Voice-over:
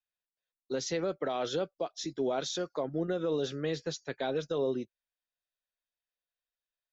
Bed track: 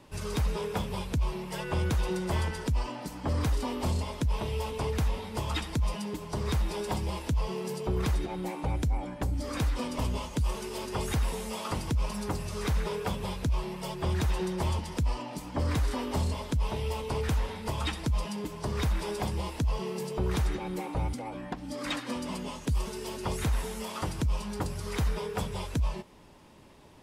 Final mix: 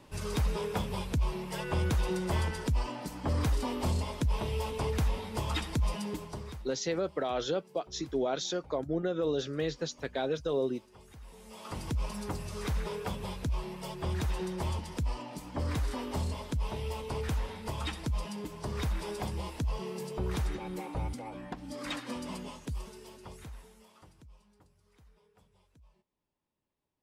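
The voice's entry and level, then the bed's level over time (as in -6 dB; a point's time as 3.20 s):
5.95 s, +0.5 dB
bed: 6.19 s -1 dB
6.76 s -23.5 dB
11.16 s -23.5 dB
11.85 s -4 dB
22.35 s -4 dB
24.76 s -33 dB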